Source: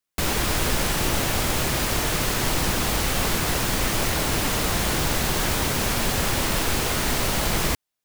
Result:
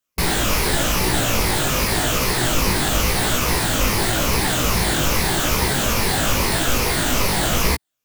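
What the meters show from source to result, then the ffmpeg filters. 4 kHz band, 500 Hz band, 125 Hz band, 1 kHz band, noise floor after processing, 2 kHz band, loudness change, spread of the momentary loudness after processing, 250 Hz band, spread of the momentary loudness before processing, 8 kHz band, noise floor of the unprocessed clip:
+4.0 dB, +4.0 dB, +4.0 dB, +4.5 dB, −79 dBFS, +4.5 dB, +4.0 dB, 0 LU, +4.0 dB, 0 LU, +4.0 dB, −83 dBFS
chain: -af "afftfilt=real='re*pow(10,7/40*sin(2*PI*(0.85*log(max(b,1)*sr/1024/100)/log(2)-(-2.4)*(pts-256)/sr)))':imag='im*pow(10,7/40*sin(2*PI*(0.85*log(max(b,1)*sr/1024/100)/log(2)-(-2.4)*(pts-256)/sr)))':win_size=1024:overlap=0.75,flanger=delay=16:depth=3.9:speed=0.89,volume=6.5dB"

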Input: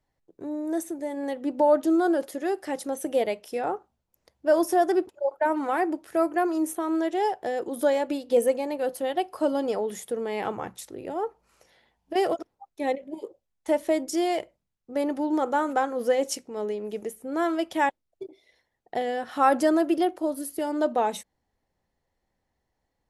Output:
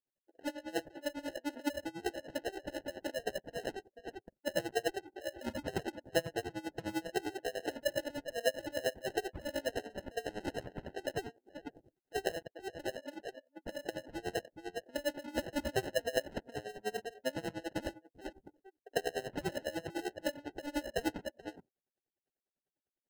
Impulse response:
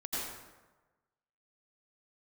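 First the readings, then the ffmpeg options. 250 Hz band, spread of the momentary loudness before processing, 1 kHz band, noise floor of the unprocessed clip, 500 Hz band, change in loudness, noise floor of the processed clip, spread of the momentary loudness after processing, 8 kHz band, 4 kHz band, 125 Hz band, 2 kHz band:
−14.5 dB, 12 LU, −16.5 dB, −79 dBFS, −12.5 dB, −13.0 dB, below −85 dBFS, 11 LU, −8.0 dB, −2.0 dB, can't be measured, −6.0 dB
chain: -filter_complex "[0:a]lowpass=frequency=5900:width=0.5412,lowpass=frequency=5900:width=1.3066,equalizer=frequency=3900:width_type=o:width=0.3:gain=5,asplit=2[link_01][link_02];[link_02]aecho=0:1:47|433:0.473|0.1[link_03];[link_01][link_03]amix=inputs=2:normalize=0,alimiter=limit=-19.5dB:level=0:latency=1:release=95,acompressor=threshold=-40dB:ratio=3,aphaser=in_gain=1:out_gain=1:delay=4:decay=0.54:speed=1.3:type=sinusoidal,highpass=470,acrusher=samples=38:mix=1:aa=0.000001,afftdn=noise_reduction=20:noise_floor=-56,aeval=exprs='val(0)*pow(10,-23*(0.5-0.5*cos(2*PI*10*n/s))/20)':channel_layout=same,volume=7.5dB"

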